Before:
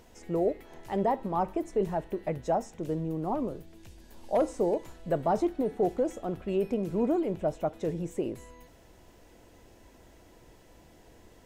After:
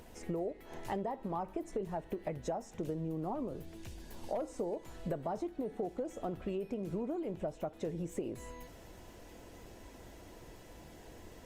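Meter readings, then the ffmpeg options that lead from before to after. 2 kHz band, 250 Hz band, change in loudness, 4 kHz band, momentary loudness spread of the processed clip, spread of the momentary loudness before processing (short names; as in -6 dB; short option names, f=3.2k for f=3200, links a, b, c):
-5.5 dB, -8.0 dB, -9.0 dB, n/a, 16 LU, 7 LU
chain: -af "acompressor=threshold=-37dB:ratio=12,volume=3dB" -ar 48000 -c:a libopus -b:a 32k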